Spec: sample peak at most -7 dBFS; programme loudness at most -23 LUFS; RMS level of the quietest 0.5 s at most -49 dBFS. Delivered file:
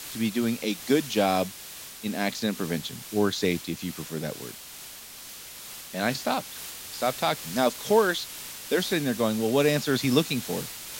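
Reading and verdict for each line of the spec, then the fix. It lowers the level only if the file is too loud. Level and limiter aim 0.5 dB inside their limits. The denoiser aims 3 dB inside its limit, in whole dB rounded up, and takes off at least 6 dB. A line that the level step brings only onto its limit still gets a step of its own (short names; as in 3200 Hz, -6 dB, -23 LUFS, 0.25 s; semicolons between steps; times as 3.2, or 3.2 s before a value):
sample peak -8.0 dBFS: OK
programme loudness -27.0 LUFS: OK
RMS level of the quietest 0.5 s -43 dBFS: fail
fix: denoiser 9 dB, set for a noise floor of -43 dBFS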